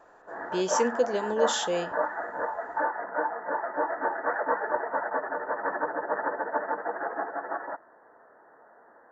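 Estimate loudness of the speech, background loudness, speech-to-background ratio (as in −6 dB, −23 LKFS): −28.5 LKFS, −31.0 LKFS, 2.5 dB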